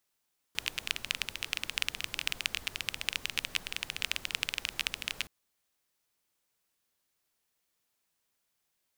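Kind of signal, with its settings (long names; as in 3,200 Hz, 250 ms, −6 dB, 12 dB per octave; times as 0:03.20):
rain-like ticks over hiss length 4.72 s, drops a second 17, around 2,700 Hz, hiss −13 dB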